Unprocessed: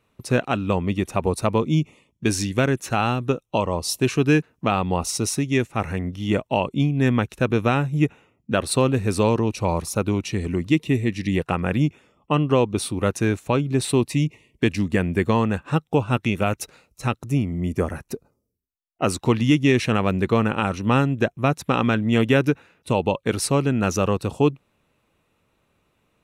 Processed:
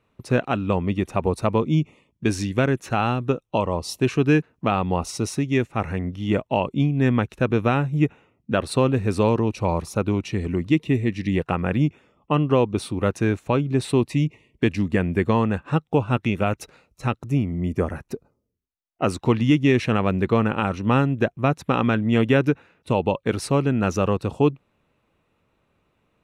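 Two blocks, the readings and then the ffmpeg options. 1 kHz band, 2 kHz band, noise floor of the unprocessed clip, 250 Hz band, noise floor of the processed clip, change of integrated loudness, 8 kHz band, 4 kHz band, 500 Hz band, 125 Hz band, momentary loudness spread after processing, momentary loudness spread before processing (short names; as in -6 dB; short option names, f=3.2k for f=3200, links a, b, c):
-0.5 dB, -1.5 dB, -70 dBFS, 0.0 dB, -71 dBFS, -0.5 dB, -8.0 dB, -3.5 dB, 0.0 dB, 0.0 dB, 6 LU, 6 LU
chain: -af "highshelf=f=5k:g=-11"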